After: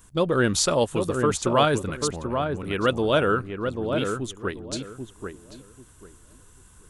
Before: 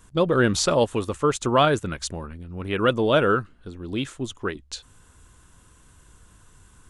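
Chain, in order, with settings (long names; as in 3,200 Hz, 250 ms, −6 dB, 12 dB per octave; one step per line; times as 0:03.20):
high-shelf EQ 8,600 Hz +11.5 dB
feedback echo with a low-pass in the loop 789 ms, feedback 24%, low-pass 1,200 Hz, level −4.5 dB
level −2 dB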